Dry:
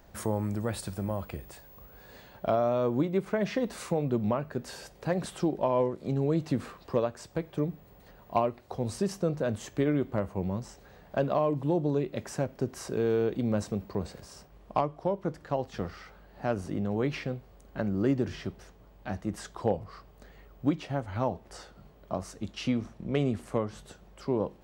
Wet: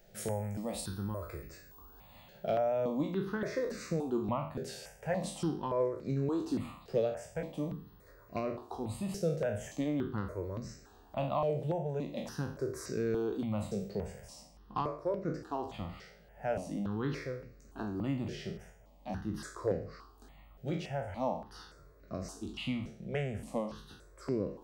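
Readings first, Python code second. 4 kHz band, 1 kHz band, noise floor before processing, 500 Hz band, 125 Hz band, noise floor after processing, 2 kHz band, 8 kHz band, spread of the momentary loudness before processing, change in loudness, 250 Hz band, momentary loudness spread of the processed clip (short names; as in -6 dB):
-3.0 dB, -5.0 dB, -56 dBFS, -5.0 dB, -5.5 dB, -59 dBFS, -4.0 dB, -2.5 dB, 14 LU, -5.0 dB, -5.5 dB, 15 LU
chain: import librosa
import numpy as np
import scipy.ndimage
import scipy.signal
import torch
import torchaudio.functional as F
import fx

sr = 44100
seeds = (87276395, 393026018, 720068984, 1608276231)

y = fx.spec_trails(x, sr, decay_s=0.52)
y = fx.hum_notches(y, sr, base_hz=60, count=3)
y = fx.phaser_held(y, sr, hz=3.5, low_hz=280.0, high_hz=3200.0)
y = y * librosa.db_to_amplitude(-3.0)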